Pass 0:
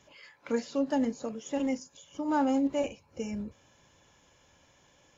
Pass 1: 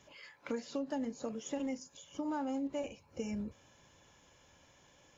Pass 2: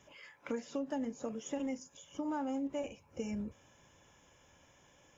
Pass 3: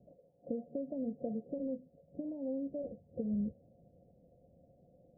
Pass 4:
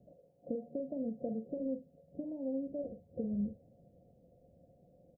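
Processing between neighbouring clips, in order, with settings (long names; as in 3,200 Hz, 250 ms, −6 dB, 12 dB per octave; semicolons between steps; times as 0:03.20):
downward compressor 6 to 1, threshold −33 dBFS, peak gain reduction 10.5 dB; level −1 dB
parametric band 4,300 Hz −14 dB 0.24 octaves
downward compressor, threshold −37 dBFS, peak gain reduction 5.5 dB; Chebyshev low-pass with heavy ripple 730 Hz, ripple 9 dB; level +8 dB
double-tracking delay 45 ms −10 dB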